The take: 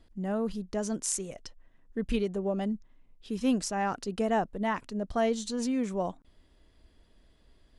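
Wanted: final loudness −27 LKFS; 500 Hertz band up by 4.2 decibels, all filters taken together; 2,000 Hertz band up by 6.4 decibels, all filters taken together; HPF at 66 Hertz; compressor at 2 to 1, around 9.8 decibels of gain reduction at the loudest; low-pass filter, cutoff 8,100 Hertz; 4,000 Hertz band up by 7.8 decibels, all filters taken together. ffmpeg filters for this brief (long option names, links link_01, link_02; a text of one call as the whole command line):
ffmpeg -i in.wav -af "highpass=66,lowpass=8100,equalizer=frequency=500:width_type=o:gain=5,equalizer=frequency=2000:width_type=o:gain=5.5,equalizer=frequency=4000:width_type=o:gain=9,acompressor=threshold=-38dB:ratio=2,volume=9.5dB" out.wav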